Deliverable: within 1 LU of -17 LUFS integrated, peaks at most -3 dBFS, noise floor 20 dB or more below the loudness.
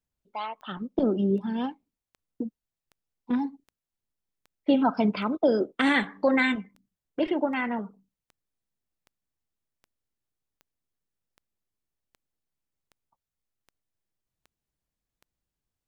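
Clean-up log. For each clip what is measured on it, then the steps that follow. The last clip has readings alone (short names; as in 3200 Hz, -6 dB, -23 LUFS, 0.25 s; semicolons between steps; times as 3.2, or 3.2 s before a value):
clicks 20; loudness -27.0 LUFS; peak -11.0 dBFS; loudness target -17.0 LUFS
-> de-click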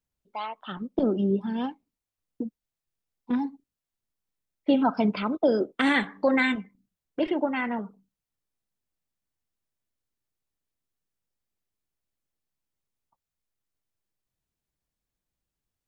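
clicks 0; loudness -27.0 LUFS; peak -11.0 dBFS; loudness target -17.0 LUFS
-> gain +10 dB; limiter -3 dBFS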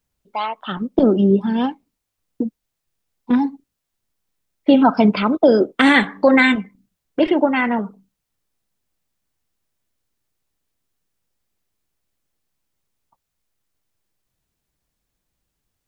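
loudness -17.5 LUFS; peak -3.0 dBFS; noise floor -79 dBFS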